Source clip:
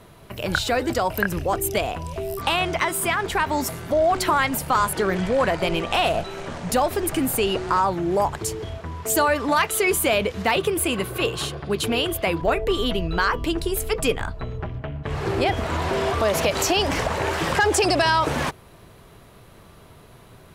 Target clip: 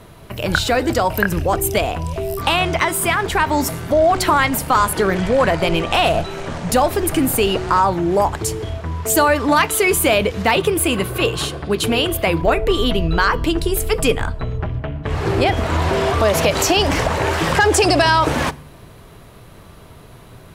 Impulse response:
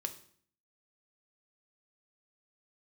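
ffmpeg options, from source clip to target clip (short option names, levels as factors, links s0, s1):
-filter_complex "[0:a]asplit=2[s0][s1];[1:a]atrim=start_sample=2205,asetrate=37044,aresample=44100,lowshelf=f=250:g=9.5[s2];[s1][s2]afir=irnorm=-1:irlink=0,volume=0.251[s3];[s0][s3]amix=inputs=2:normalize=0,volume=1.41"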